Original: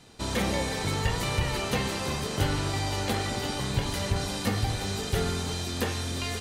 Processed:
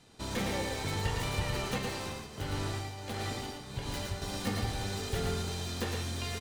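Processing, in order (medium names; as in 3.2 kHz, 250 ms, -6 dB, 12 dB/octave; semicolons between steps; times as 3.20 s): tracing distortion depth 0.047 ms; 1.78–4.22 s: tremolo triangle 1.5 Hz, depth 80%; delay 113 ms -4 dB; trim -6.5 dB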